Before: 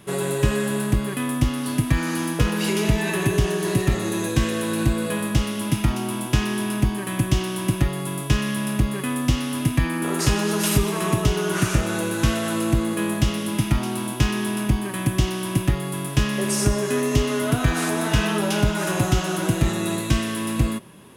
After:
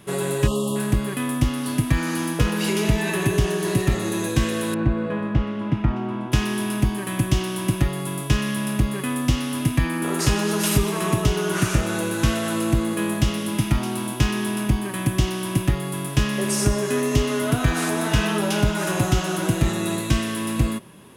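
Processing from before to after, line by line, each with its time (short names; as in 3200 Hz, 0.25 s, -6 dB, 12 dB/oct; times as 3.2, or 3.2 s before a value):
0.47–0.76 spectral delete 1300–2700 Hz
4.74–6.32 LPF 1700 Hz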